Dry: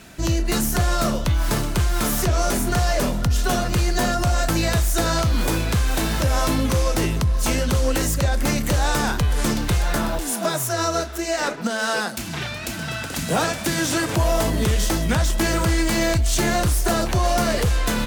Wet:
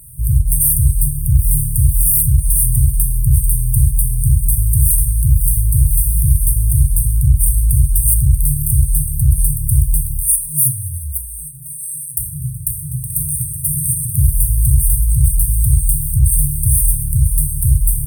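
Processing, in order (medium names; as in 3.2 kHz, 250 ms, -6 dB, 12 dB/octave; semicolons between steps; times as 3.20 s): FFT band-reject 160–8400 Hz; treble shelf 3.6 kHz +10.5 dB; feedback comb 62 Hz, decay 0.39 s, harmonics all, mix 50%; feedback echo behind a high-pass 536 ms, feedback 76%, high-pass 4 kHz, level -22 dB; reverberation RT60 0.60 s, pre-delay 31 ms, DRR 3 dB; loudness maximiser +11.5 dB; trim -1 dB; Opus 256 kbps 48 kHz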